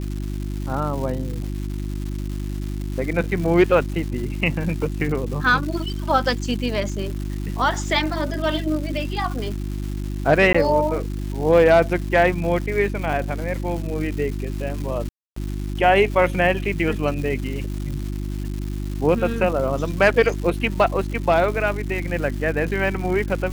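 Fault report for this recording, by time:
crackle 410/s -30 dBFS
hum 50 Hz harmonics 7 -27 dBFS
10.53–10.54 gap 15 ms
15.09–15.36 gap 0.274 s

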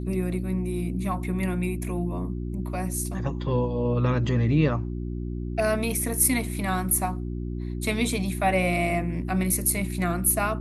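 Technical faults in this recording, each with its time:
hum 60 Hz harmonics 6 -31 dBFS

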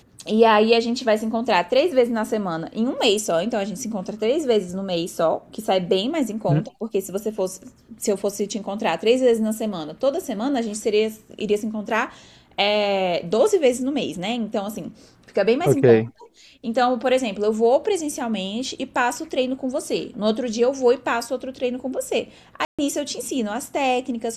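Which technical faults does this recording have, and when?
22.65–22.79 gap 0.136 s

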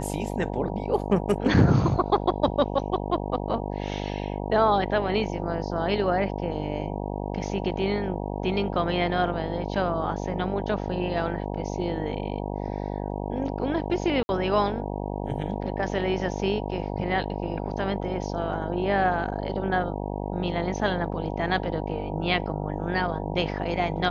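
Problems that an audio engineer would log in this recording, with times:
buzz 50 Hz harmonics 19 -31 dBFS
14.23–14.29 gap 61 ms

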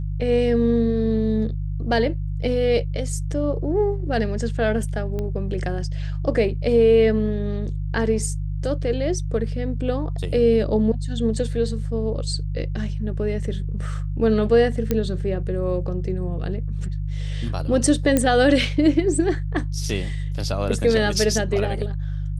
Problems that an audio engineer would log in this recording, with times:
hum 50 Hz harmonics 3 -26 dBFS
5.19 pop -17 dBFS
14.91 pop -8 dBFS
18.17 pop -6 dBFS

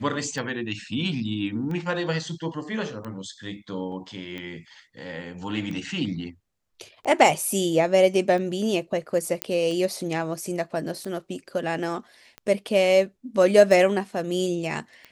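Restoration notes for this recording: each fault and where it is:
tick 45 rpm
3.92 gap 3.4 ms
9.42 pop -6 dBFS

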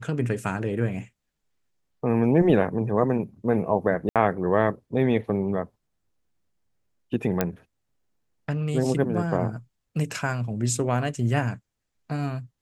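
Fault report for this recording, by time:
4.09–4.16 gap 67 ms
7.41 pop -8 dBFS

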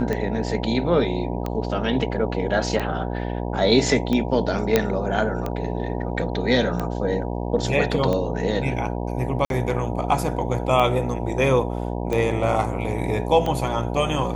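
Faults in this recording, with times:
buzz 60 Hz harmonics 16 -27 dBFS
tick 45 rpm -13 dBFS
4.76 pop -3 dBFS
9.45–9.5 gap 52 ms

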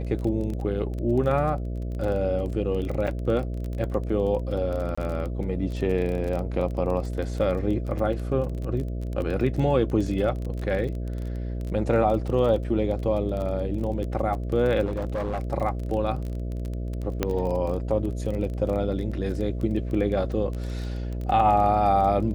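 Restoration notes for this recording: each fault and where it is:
buzz 60 Hz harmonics 11 -30 dBFS
crackle 21/s -30 dBFS
3.07–3.08 gap 5.5 ms
4.95–4.97 gap 25 ms
14.85–15.4 clipped -24 dBFS
17.23 pop -9 dBFS

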